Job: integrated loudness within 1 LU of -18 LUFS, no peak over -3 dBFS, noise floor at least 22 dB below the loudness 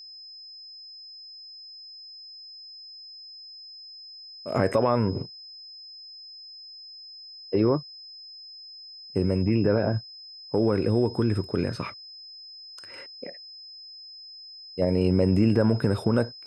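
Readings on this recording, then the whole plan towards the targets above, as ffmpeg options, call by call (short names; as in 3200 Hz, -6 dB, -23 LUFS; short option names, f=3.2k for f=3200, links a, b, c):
steady tone 5100 Hz; tone level -42 dBFS; loudness -25.0 LUFS; peak -8.5 dBFS; loudness target -18.0 LUFS
-> -af "bandreject=f=5.1k:w=30"
-af "volume=7dB,alimiter=limit=-3dB:level=0:latency=1"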